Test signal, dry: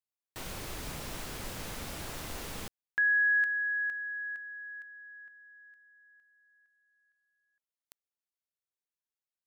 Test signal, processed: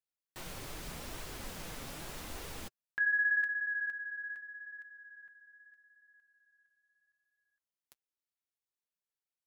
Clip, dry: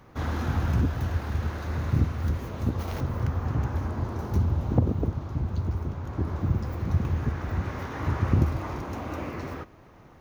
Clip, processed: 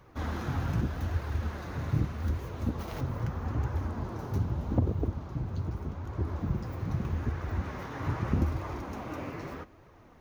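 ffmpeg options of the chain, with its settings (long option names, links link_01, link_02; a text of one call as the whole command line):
ffmpeg -i in.wav -af "flanger=delay=1.7:depth=6.1:regen=-40:speed=0.81:shape=triangular" out.wav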